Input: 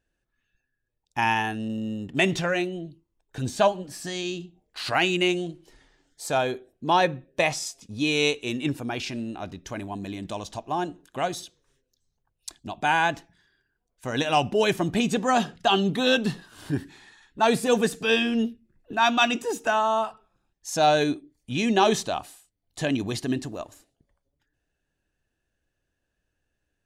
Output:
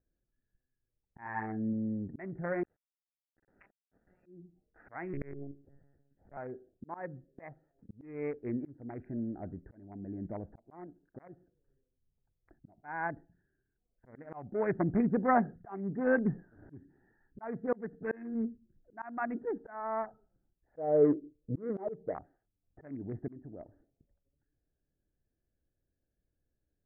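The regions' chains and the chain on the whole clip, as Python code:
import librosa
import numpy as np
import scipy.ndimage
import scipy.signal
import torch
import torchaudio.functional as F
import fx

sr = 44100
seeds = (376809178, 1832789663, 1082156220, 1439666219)

y = fx.chain(x, sr, fx.highpass(hz=130.0, slope=6),
    fx.doubler(ms=46.0, db=-4), at=(1.21, 1.73))
y = fx.chain(y, sr, fx.ladder_highpass(hz=2700.0, resonance_pct=75),
    fx.comb(ms=4.1, depth=0.95),
    fx.sample_gate(floor_db=-41.0), at=(2.63, 4.26))
y = fx.chain(y, sr, fx.peak_eq(hz=1500.0, db=-5.5, octaves=0.51),
    fx.lpc_monotone(seeds[0], pitch_hz=140.0, order=10),
    fx.doppler_dist(depth_ms=0.23), at=(5.13, 6.37))
y = fx.chain(y, sr, fx.block_float(bits=7),
    fx.high_shelf(hz=2100.0, db=10.0),
    fx.level_steps(step_db=9), at=(10.87, 11.29))
y = fx.chain(y, sr, fx.lowpass_res(hz=490.0, q=4.8),
    fx.comb(ms=6.4, depth=0.37), at=(20.77, 22.15))
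y = fx.wiener(y, sr, points=41)
y = scipy.signal.sosfilt(scipy.signal.butter(16, 2100.0, 'lowpass', fs=sr, output='sos'), y)
y = fx.auto_swell(y, sr, attack_ms=526.0)
y = F.gain(torch.from_numpy(y), -3.0).numpy()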